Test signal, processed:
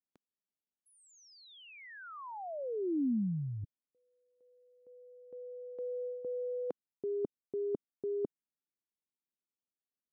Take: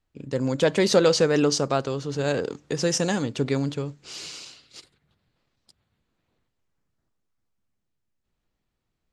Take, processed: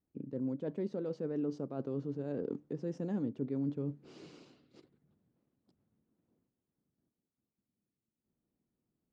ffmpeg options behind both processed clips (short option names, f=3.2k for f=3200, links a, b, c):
-af "areverse,acompressor=threshold=-31dB:ratio=12,areverse,bandpass=f=250:t=q:w=1.4:csg=0,volume=2.5dB"